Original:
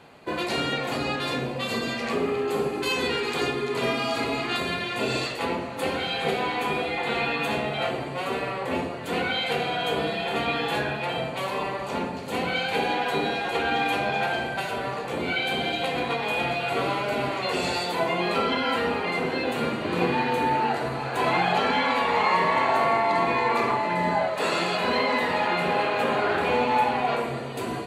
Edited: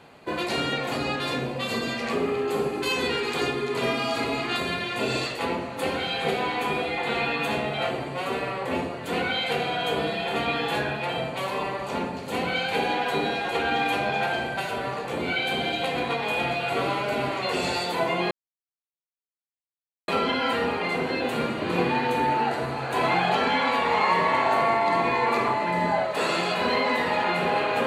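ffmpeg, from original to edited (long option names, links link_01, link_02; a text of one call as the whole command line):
ffmpeg -i in.wav -filter_complex "[0:a]asplit=2[link_01][link_02];[link_01]atrim=end=18.31,asetpts=PTS-STARTPTS,afade=type=out:start_time=18.306:duration=0.004:curve=hsin,apad=pad_dur=1.77[link_03];[link_02]atrim=start=18.31,asetpts=PTS-STARTPTS,afade=type=in:duration=0.004:curve=hsin[link_04];[link_03][link_04]concat=n=2:v=0:a=1" out.wav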